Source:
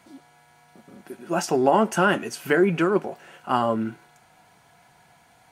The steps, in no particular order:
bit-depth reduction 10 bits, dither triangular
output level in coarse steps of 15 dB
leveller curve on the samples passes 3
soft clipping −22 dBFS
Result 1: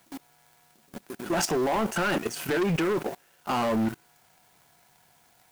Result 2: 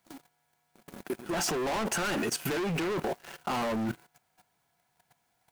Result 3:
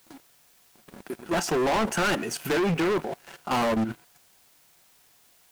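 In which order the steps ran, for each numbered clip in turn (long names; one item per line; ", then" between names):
output level in coarse steps, then bit-depth reduction, then leveller curve on the samples, then soft clipping
bit-depth reduction, then leveller curve on the samples, then soft clipping, then output level in coarse steps
leveller curve on the samples, then output level in coarse steps, then bit-depth reduction, then soft clipping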